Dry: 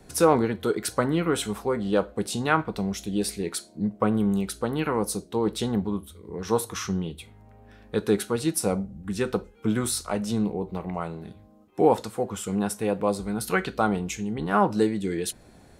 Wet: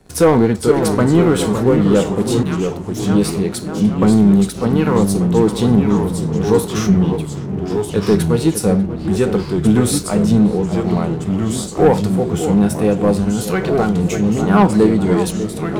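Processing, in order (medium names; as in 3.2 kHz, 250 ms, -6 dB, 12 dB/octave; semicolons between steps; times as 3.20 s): on a send: filtered feedback delay 593 ms, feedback 67%, low-pass 1.7 kHz, level -13 dB; on the sum: harmonic-percussive split harmonic +7 dB; 2.43–3.00 s: differentiator; waveshaping leveller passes 2; bass shelf 420 Hz +4 dB; 13.20–13.99 s: compression, threshold -11 dBFS, peak gain reduction 6 dB; ever faster or slower copies 439 ms, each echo -2 st, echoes 3, each echo -6 dB; trim -3.5 dB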